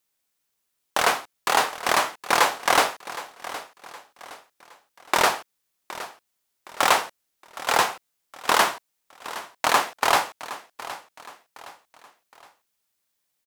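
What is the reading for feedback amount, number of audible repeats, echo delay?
39%, 3, 0.766 s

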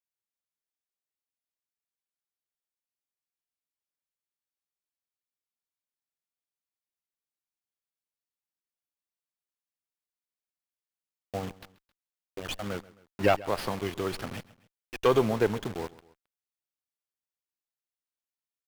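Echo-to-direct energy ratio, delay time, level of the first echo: -19.5 dB, 0.133 s, -20.5 dB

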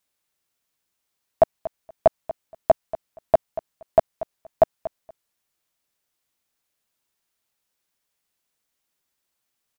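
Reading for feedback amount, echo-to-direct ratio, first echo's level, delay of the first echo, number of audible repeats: 16%, -15.0 dB, -15.0 dB, 0.236 s, 2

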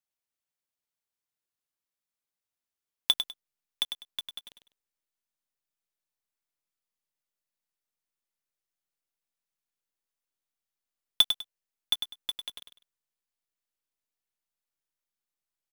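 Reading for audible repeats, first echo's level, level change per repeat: 2, -8.0 dB, -12.5 dB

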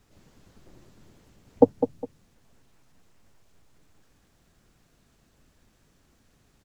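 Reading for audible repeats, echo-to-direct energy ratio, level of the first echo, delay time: 2, -8.5 dB, -9.0 dB, 0.204 s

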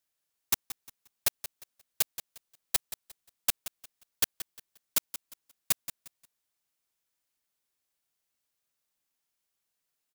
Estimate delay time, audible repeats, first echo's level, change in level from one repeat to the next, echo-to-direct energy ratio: 0.177 s, 2, -13.0 dB, -11.5 dB, -12.5 dB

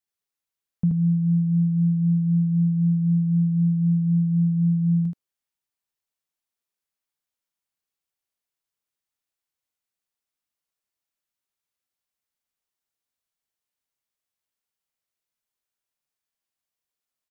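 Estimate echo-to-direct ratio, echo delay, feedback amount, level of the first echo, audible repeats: -3.5 dB, 78 ms, no steady repeat, -3.5 dB, 1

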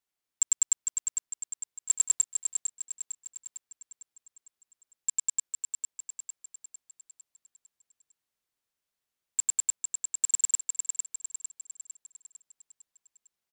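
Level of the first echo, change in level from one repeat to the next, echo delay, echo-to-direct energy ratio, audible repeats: -6.0 dB, -6.0 dB, 0.453 s, -5.0 dB, 5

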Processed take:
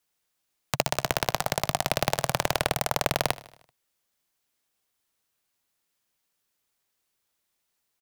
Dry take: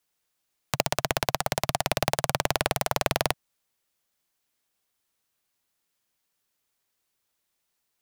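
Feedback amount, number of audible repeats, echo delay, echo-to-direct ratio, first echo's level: 55%, 4, 77 ms, -17.5 dB, -19.0 dB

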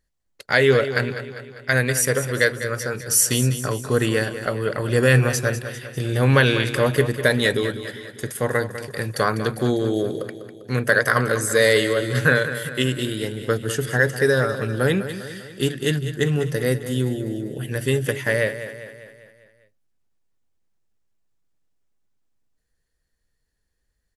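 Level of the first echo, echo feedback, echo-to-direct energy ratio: -11.5 dB, 54%, -10.0 dB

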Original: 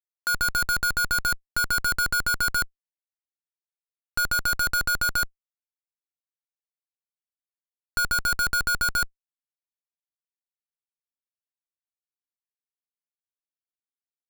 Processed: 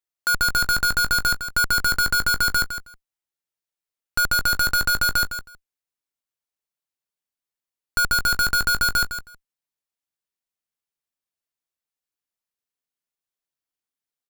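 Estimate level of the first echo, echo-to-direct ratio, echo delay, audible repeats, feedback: -10.0 dB, -10.0 dB, 0.159 s, 2, 15%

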